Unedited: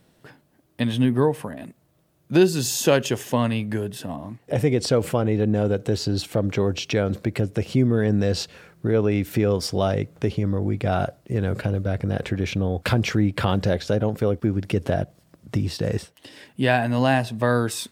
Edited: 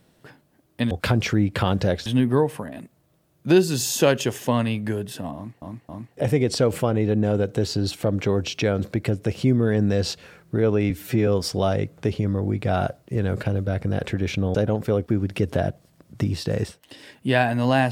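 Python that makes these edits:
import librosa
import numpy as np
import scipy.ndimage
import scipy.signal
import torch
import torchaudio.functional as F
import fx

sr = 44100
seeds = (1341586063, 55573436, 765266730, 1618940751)

y = fx.edit(x, sr, fx.repeat(start_s=4.2, length_s=0.27, count=3),
    fx.stretch_span(start_s=9.21, length_s=0.25, factor=1.5),
    fx.move(start_s=12.73, length_s=1.15, to_s=0.91), tone=tone)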